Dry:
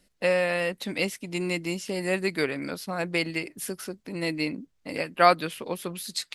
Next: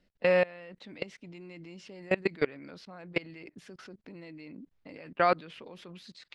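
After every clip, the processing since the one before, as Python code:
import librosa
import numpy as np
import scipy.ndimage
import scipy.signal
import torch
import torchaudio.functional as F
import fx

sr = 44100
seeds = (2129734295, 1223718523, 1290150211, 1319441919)

y = fx.high_shelf(x, sr, hz=9000.0, db=-9.5)
y = fx.level_steps(y, sr, step_db=24)
y = fx.air_absorb(y, sr, metres=140.0)
y = F.gain(torch.from_numpy(y), 2.0).numpy()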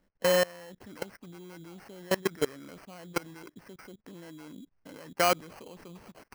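y = fx.sample_hold(x, sr, seeds[0], rate_hz=3600.0, jitter_pct=0)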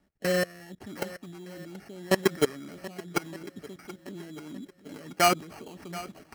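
y = fx.rotary_switch(x, sr, hz=0.75, then_hz=6.7, switch_at_s=2.93)
y = fx.notch_comb(y, sr, f0_hz=510.0)
y = fx.echo_swing(y, sr, ms=1215, ratio=1.5, feedback_pct=37, wet_db=-17.0)
y = F.gain(torch.from_numpy(y), 6.5).numpy()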